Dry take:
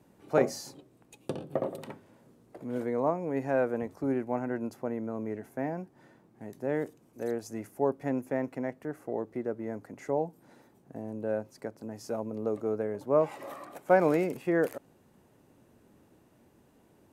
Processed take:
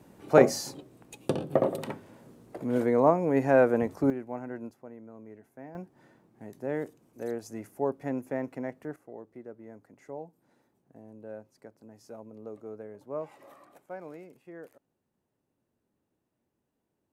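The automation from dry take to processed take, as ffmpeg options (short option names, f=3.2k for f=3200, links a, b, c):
-af "asetnsamples=n=441:p=0,asendcmd='4.1 volume volume -5.5dB;4.71 volume volume -12.5dB;5.75 volume volume -1.5dB;8.96 volume volume -11dB;13.86 volume volume -19dB',volume=6.5dB"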